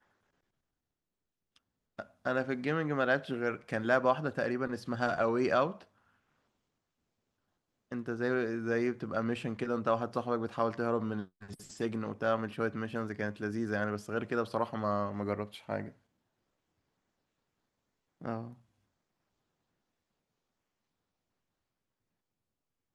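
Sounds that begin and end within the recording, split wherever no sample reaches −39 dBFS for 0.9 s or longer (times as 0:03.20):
0:01.99–0:05.72
0:07.92–0:15.89
0:18.22–0:18.48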